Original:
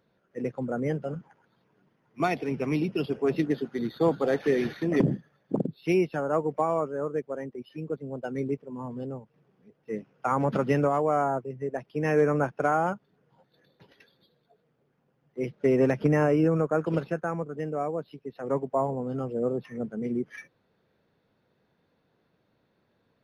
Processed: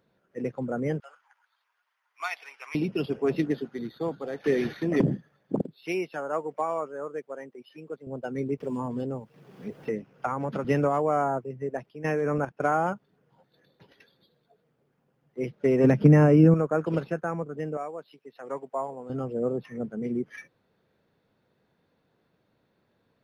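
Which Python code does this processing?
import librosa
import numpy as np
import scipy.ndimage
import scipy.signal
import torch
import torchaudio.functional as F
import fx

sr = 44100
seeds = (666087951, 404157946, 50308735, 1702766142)

y = fx.highpass(x, sr, hz=1000.0, slope=24, at=(1.0, 2.75))
y = fx.highpass(y, sr, hz=650.0, slope=6, at=(5.61, 8.07))
y = fx.band_squash(y, sr, depth_pct=100, at=(8.6, 10.65))
y = fx.level_steps(y, sr, step_db=13, at=(11.89, 12.61))
y = fx.peak_eq(y, sr, hz=180.0, db=10.5, octaves=1.6, at=(15.84, 16.54))
y = fx.highpass(y, sr, hz=920.0, slope=6, at=(17.77, 19.1))
y = fx.edit(y, sr, fx.fade_out_to(start_s=3.46, length_s=0.98, curve='qua', floor_db=-9.5), tone=tone)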